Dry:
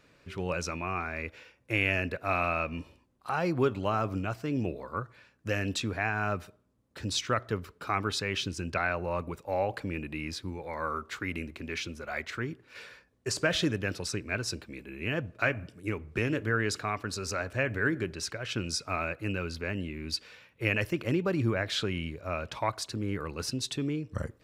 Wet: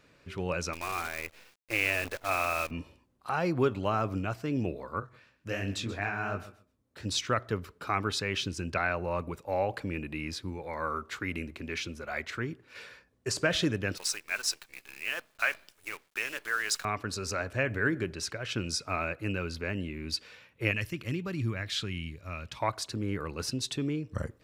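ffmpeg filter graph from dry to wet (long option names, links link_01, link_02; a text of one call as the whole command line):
ffmpeg -i in.wav -filter_complex "[0:a]asettb=1/sr,asplit=3[link_01][link_02][link_03];[link_01]atrim=end=0.734[link_04];[link_02]atrim=start=0.73:end=2.71,asetpts=PTS-STARTPTS,afade=type=in:duration=0.004:curve=qsin,afade=type=out:start_time=1.976:duration=0.004:curve=qsin,equalizer=frequency=160:width_type=o:width=1.5:gain=-14,acrusher=bits=7:dc=4:mix=0:aa=0.000001[link_05];[link_03]atrim=start=2.706[link_06];[link_04][link_05]acrossfade=duration=0.004:curve1=hsin:curve2=qsin[link_07];[link_07][link_06]acrossfade=duration=0.004:curve1=qsin:curve2=hsin,asettb=1/sr,asplit=3[link_08][link_09][link_10];[link_08]atrim=end=5.004[link_11];[link_09]atrim=start=5:end=7.06,asetpts=PTS-STARTPTS,afade=type=in:duration=0.004:curve=qsin,afade=type=out:start_time=2.056:duration=0.004:curve=qsin,flanger=delay=19.5:depth=6.1:speed=2.9,aecho=1:1:131|262:0.168|0.0302,atrim=end_sample=90846[link_12];[link_10]atrim=start=7.056[link_13];[link_11][link_12]acrossfade=duration=0.004:curve1=hsin:curve2=qsin[link_14];[link_14][link_13]acrossfade=duration=0.004:curve1=qsin:curve2=hsin,asettb=1/sr,asplit=3[link_15][link_16][link_17];[link_15]atrim=end=13.974[link_18];[link_16]atrim=start=13.97:end=16.85,asetpts=PTS-STARTPTS,afade=type=in:duration=0.004:curve=qsin,afade=type=out:start_time=2.876:duration=0.004:curve=qsin,highpass=920,highshelf=frequency=4600:gain=8.5,acrusher=bits=8:dc=4:mix=0:aa=0.000001[link_19];[link_17]atrim=start=16.846[link_20];[link_18][link_19]acrossfade=duration=0.004:curve1=hsin:curve2=qsin[link_21];[link_21][link_20]acrossfade=duration=0.004:curve1=qsin:curve2=hsin,asettb=1/sr,asplit=3[link_22][link_23][link_24];[link_22]atrim=end=20.714[link_25];[link_23]atrim=start=20.71:end=22.6,asetpts=PTS-STARTPTS,afade=type=in:duration=0.004:curve=qsin,afade=type=out:start_time=1.886:duration=0.004:curve=qsin,equalizer=frequency=590:width=0.59:gain=-12,bandreject=frequency=1500:width=19[link_26];[link_24]atrim=start=22.596[link_27];[link_25][link_26]acrossfade=duration=0.004:curve1=hsin:curve2=qsin[link_28];[link_28][link_27]acrossfade=duration=0.004:curve1=qsin:curve2=hsin" out.wav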